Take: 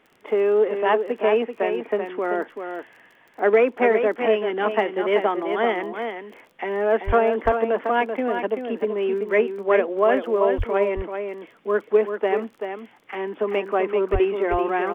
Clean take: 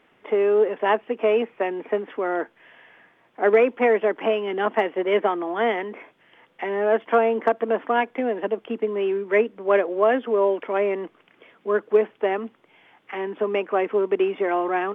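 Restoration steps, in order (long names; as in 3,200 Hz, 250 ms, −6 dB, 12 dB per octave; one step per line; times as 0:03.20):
click removal
0:07.06–0:07.18: high-pass filter 140 Hz 24 dB per octave
0:10.57–0:10.69: high-pass filter 140 Hz 24 dB per octave
0:14.12–0:14.24: high-pass filter 140 Hz 24 dB per octave
echo removal 385 ms −7 dB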